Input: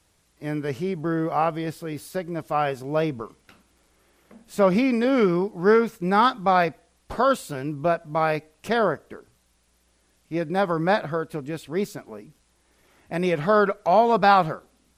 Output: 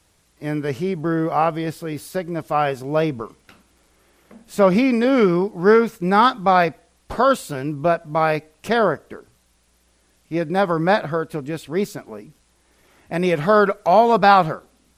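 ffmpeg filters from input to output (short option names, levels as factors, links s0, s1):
-filter_complex "[0:a]asettb=1/sr,asplit=3[s0][s1][s2];[s0]atrim=end=13.294[s3];[s1]atrim=start=13.29:end=14.18,asetpts=PTS-STARTPTS,afade=t=in:d=0.004:c=qsin,afade=t=out:st=0.886:d=0.004:c=qsin,highshelf=f=9400:g=6.5[s4];[s2]atrim=start=14.176[s5];[s3][s4]acrossfade=d=0.004:c1=hsin:c2=qsin[s6];[s6][s5]acrossfade=d=0.004:c1=qsin:c2=hsin,volume=1.58"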